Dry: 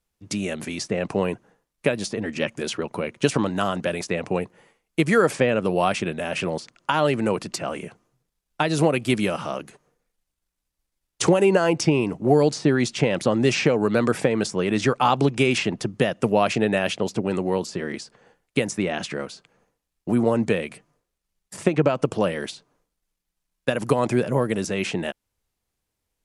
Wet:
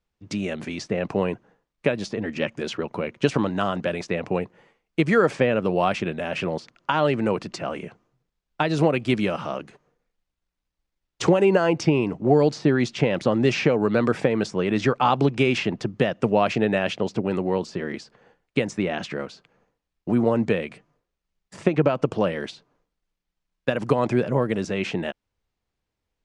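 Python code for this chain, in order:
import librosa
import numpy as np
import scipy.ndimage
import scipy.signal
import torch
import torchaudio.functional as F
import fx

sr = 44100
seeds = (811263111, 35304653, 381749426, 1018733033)

y = fx.air_absorb(x, sr, metres=110.0)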